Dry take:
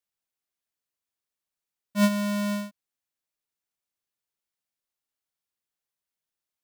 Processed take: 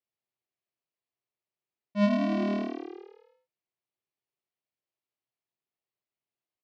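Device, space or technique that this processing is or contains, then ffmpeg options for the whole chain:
frequency-shifting delay pedal into a guitar cabinet: -filter_complex "[0:a]asplit=9[a][b][c][d][e][f][g][h][i];[b]adelay=95,afreqshift=38,volume=-6dB[j];[c]adelay=190,afreqshift=76,volume=-10.4dB[k];[d]adelay=285,afreqshift=114,volume=-14.9dB[l];[e]adelay=380,afreqshift=152,volume=-19.3dB[m];[f]adelay=475,afreqshift=190,volume=-23.7dB[n];[g]adelay=570,afreqshift=228,volume=-28.2dB[o];[h]adelay=665,afreqshift=266,volume=-32.6dB[p];[i]adelay=760,afreqshift=304,volume=-37.1dB[q];[a][j][k][l][m][n][o][p][q]amix=inputs=9:normalize=0,highpass=96,equalizer=f=120:t=q:w=4:g=9,equalizer=f=370:t=q:w=4:g=7,equalizer=f=660:t=q:w=4:g=4,equalizer=f=1.5k:t=q:w=4:g=-7,equalizer=f=3.6k:t=q:w=4:g=-5,lowpass=f=4.2k:w=0.5412,lowpass=f=4.2k:w=1.3066,volume=-3.5dB"

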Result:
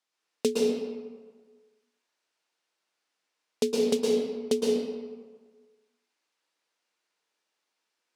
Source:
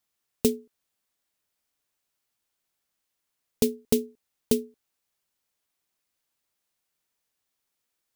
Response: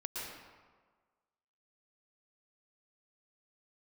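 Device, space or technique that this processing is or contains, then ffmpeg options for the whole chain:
supermarket ceiling speaker: -filter_complex "[0:a]highpass=310,lowpass=6.3k[a];[1:a]atrim=start_sample=2205[b];[a][b]afir=irnorm=-1:irlink=0,volume=4dB"

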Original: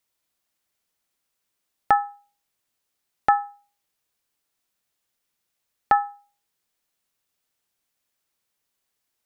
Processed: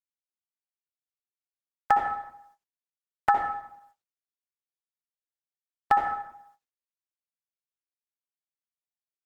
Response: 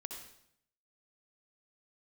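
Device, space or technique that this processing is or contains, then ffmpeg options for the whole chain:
speakerphone in a meeting room: -filter_complex "[1:a]atrim=start_sample=2205[a];[0:a][a]afir=irnorm=-1:irlink=0,dynaudnorm=f=160:g=3:m=5.5dB,agate=range=-27dB:threshold=-55dB:ratio=16:detection=peak,volume=-3.5dB" -ar 48000 -c:a libopus -b:a 16k

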